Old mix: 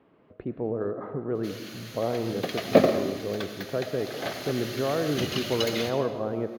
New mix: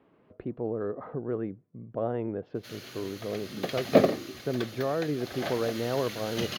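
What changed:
background: entry +1.20 s; reverb: off

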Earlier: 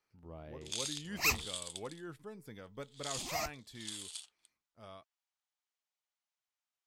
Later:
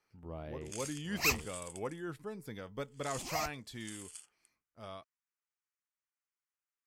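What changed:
speech +5.0 dB; first sound: add fixed phaser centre 1600 Hz, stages 4

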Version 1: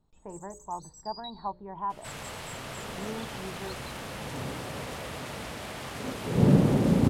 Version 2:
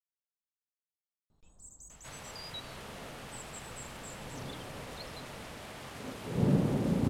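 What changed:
speech: muted; first sound: entry +1.30 s; second sound -7.0 dB

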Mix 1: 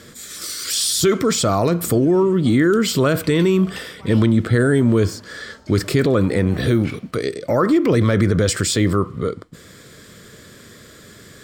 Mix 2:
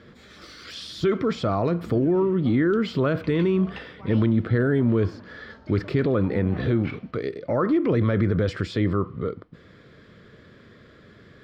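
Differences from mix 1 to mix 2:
speech -5.0 dB; master: add air absorption 300 m

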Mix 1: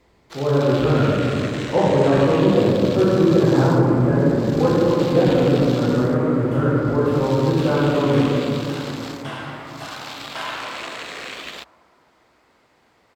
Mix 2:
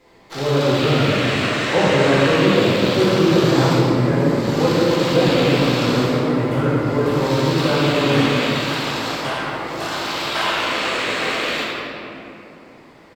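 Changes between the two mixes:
first sound: send on; second sound +7.0 dB; master: add bell 62 Hz -8.5 dB 0.54 oct

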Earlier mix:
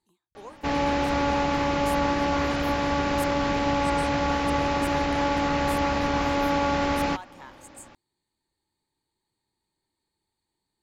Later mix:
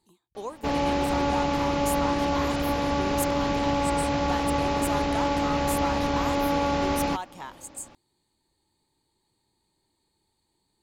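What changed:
speech +8.5 dB; master: add bell 1700 Hz -5 dB 1.1 oct

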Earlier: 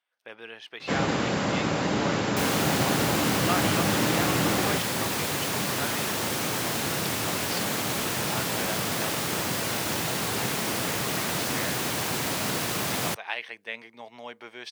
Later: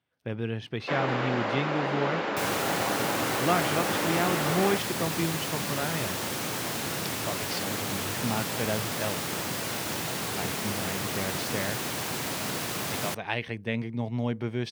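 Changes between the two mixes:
speech: remove HPF 780 Hz 12 dB/oct; first sound: add BPF 390–2800 Hz; second sound -3.5 dB

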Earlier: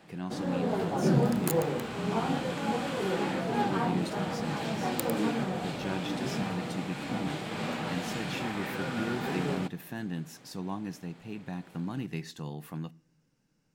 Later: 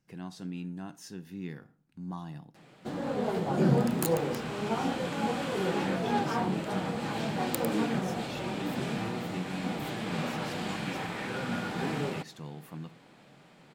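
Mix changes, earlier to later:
speech -4.0 dB; background: entry +2.55 s

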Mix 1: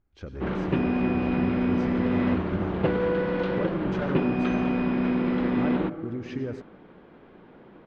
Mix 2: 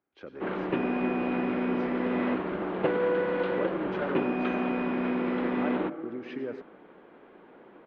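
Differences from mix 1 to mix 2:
speech: add HPF 150 Hz 12 dB/oct; master: add three-band isolator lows -15 dB, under 250 Hz, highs -21 dB, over 4000 Hz

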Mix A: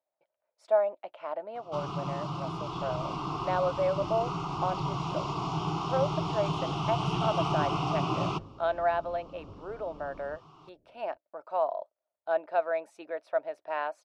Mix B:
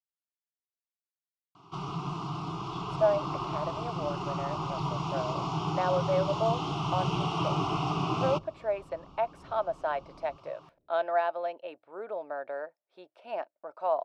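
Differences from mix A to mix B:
speech: entry +2.30 s; second sound -5.5 dB

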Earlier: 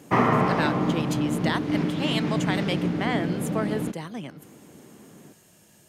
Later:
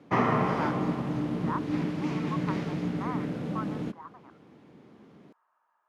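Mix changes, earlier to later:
speech: add Butterworth band-pass 1100 Hz, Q 2.6; background -4.5 dB

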